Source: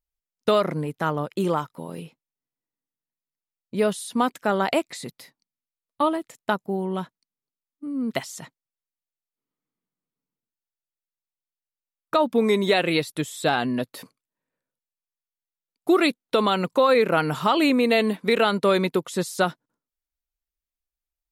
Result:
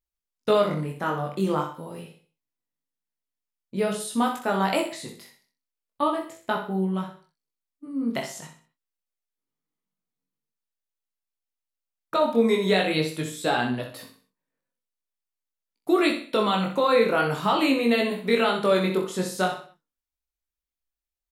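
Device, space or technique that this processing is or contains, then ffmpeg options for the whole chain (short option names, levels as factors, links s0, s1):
double-tracked vocal: -filter_complex "[0:a]asettb=1/sr,asplit=3[s0][s1][s2];[s0]atrim=end=4.004[s3];[s1]atrim=start=4:end=4.81,asetpts=PTS-STARTPTS,afade=t=in:d=0.004:c=qsin,afade=t=out:st=0.806:d=0.004:c=qsin,highshelf=f=5300:g=5[s4];[s2]atrim=start=4.806[s5];[s3][s4]acrossfade=d=0.004:c1=hsin:c2=qsin[s6];[s6][s5]acrossfade=d=0.004:c1=qsin:c2=hsin,asplit=2[s7][s8];[s8]adelay=26,volume=0.398[s9];[s7][s9]amix=inputs=2:normalize=0,aecho=1:1:63|126|189|252:0.422|0.156|0.0577|0.0214,flanger=delay=16.5:depth=5.5:speed=0.44"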